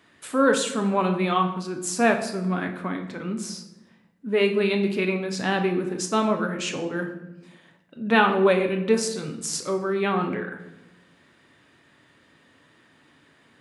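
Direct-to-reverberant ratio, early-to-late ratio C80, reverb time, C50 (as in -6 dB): 4.0 dB, 11.5 dB, 1.0 s, 9.0 dB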